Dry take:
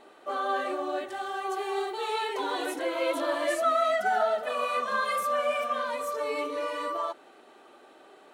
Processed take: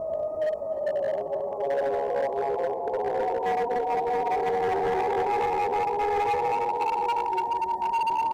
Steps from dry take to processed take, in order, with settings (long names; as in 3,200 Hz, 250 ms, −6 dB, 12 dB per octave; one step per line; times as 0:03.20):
each half-wave held at its own peak
high-pass filter 110 Hz 6 dB per octave
extreme stretch with random phases 4.5×, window 0.50 s, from 0:02.07
elliptic low-pass filter 640 Hz, stop band 40 dB
repeating echo 109 ms, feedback 50%, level −14 dB
pitch shifter +6 semitones
dynamic equaliser 450 Hz, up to +6 dB, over −34 dBFS, Q 0.81
hard clipping −22 dBFS, distortion −12 dB
on a send: single-tap delay 303 ms −20 dB